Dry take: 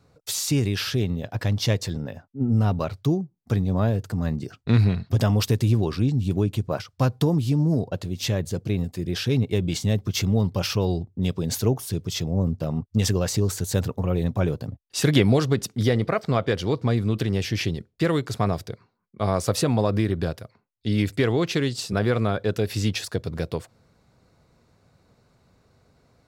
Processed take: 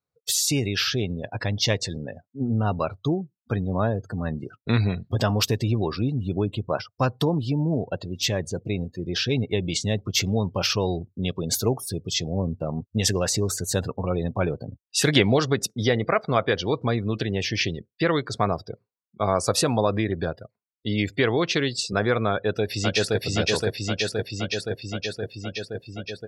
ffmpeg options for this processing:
-filter_complex "[0:a]asplit=2[a][b];[b]afade=t=in:st=22.32:d=0.01,afade=t=out:st=23.21:d=0.01,aecho=0:1:520|1040|1560|2080|2600|3120|3640|4160|4680|5200|5720|6240:1|0.8|0.64|0.512|0.4096|0.32768|0.262144|0.209715|0.167772|0.134218|0.107374|0.0858993[c];[a][c]amix=inputs=2:normalize=0,afftdn=nr=30:nf=-39,lowshelf=f=390:g=-10,volume=5dB"

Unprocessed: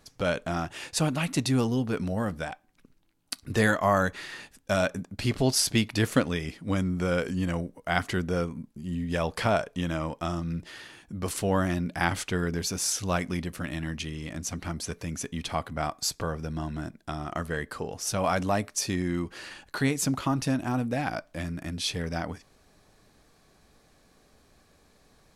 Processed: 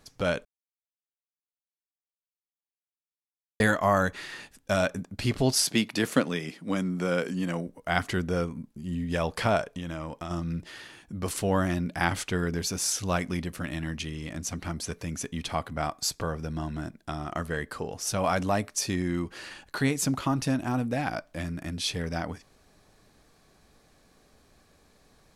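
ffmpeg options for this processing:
-filter_complex "[0:a]asettb=1/sr,asplit=3[a][b][c];[a]atrim=end=5.644[d];[b]atrim=start=5.64:end=7.67,asetpts=PTS-STARTPTS,afade=t=in:d=0.004:c=qsin,afade=t=out:st=2.026:d=0.004:c=qsin,highpass=f=150:w=0.5412,highpass=f=150:w=1.3066[e];[c]atrim=start=7.666[f];[d][e]acrossfade=d=0.004:c1=hsin:c2=qsin[g];[g][f]acrossfade=d=0.004:c1=qsin:c2=hsin,asettb=1/sr,asplit=3[h][i][j];[h]atrim=end=9.634[k];[i]atrim=start=9.63:end=10.31,asetpts=PTS-STARTPTS,afade=t=in:d=0.004:c=qsin,afade=t=out:st=0.676:d=0.004:c=qsin,acompressor=threshold=-31dB:ratio=6:attack=3.2:release=140:knee=1:detection=peak[l];[j]atrim=start=10.306[m];[k][l]acrossfade=d=0.004:c1=hsin:c2=qsin[n];[n][m]acrossfade=d=0.004:c1=qsin:c2=hsin,asplit=3[o][p][q];[o]atrim=end=0.45,asetpts=PTS-STARTPTS,afade=t=out:st=0.446:d=0.004:c=hsin[r];[p]atrim=start=0.45:end=3.6,asetpts=PTS-STARTPTS,volume=0[s];[q]atrim=start=3.6,asetpts=PTS-STARTPTS,afade=t=in:d=0.004:c=hsin[t];[r][s][t]concat=n=3:v=0:a=1"

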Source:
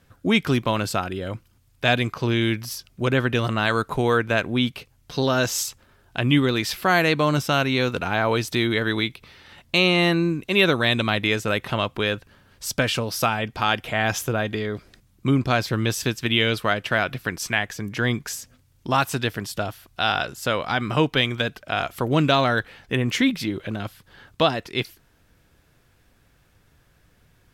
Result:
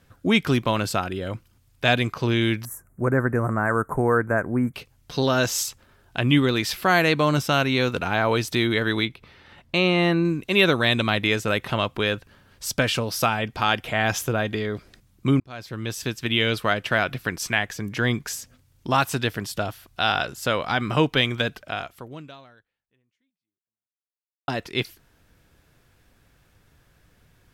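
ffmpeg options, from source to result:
-filter_complex "[0:a]asettb=1/sr,asplit=3[a][b][c];[a]atrim=end=2.654[d];[b]atrim=start=2.65:end=4.74,asetpts=PTS-STARTPTS,afade=t=in:d=0.004:c=qsin,afade=t=out:st=2.086:d=0.004:c=qsin,asuperstop=centerf=3800:order=8:qfactor=0.65[e];[c]atrim=start=4.736[f];[d][e]acrossfade=d=0.004:c1=hsin:c2=qsin[g];[g][f]acrossfade=d=0.004:c1=qsin:c2=hsin,asettb=1/sr,asplit=3[h][i][j];[h]atrim=end=9.054[k];[i]atrim=start=9.05:end=10.25,asetpts=PTS-STARTPTS,afade=t=in:d=0.004:c=qsin,afade=t=out:st=1.196:d=0.004:c=qsin,highshelf=f=3.4k:g=-10[l];[j]atrim=start=10.246[m];[k][l]acrossfade=d=0.004:c1=hsin:c2=qsin[n];[n][m]acrossfade=d=0.004:c1=qsin:c2=hsin,asplit=3[o][p][q];[o]atrim=end=15.4,asetpts=PTS-STARTPTS,afade=t=out:st=15.396:d=0.004:c=hsin[r];[p]atrim=start=15.4:end=24.48,asetpts=PTS-STARTPTS,afade=t=in:d=1.55:c=qsin,afade=t=out:st=6.21:d=2.87:c=exp[s];[q]atrim=start=24.48,asetpts=PTS-STARTPTS,afade=t=in:d=0.004:c=hsin[t];[r][s][t]concat=n=3:v=0:a=1"

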